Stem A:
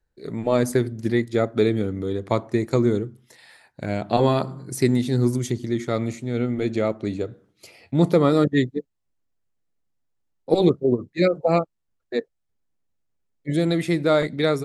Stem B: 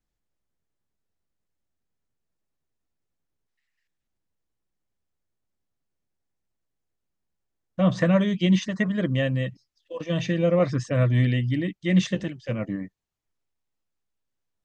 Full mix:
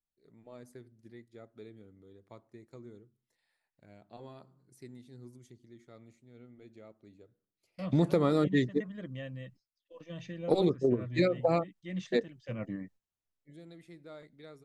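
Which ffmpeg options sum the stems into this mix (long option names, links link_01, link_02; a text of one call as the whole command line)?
ffmpeg -i stem1.wav -i stem2.wav -filter_complex "[0:a]volume=-1dB[link_01];[1:a]volume=-8.5dB,afade=type=in:start_time=12.26:duration=0.36:silence=0.354813,asplit=2[link_02][link_03];[link_03]apad=whole_len=645736[link_04];[link_01][link_04]sidechaingate=range=-29dB:threshold=-57dB:ratio=16:detection=peak[link_05];[link_05][link_02]amix=inputs=2:normalize=0,acompressor=threshold=-23dB:ratio=6" out.wav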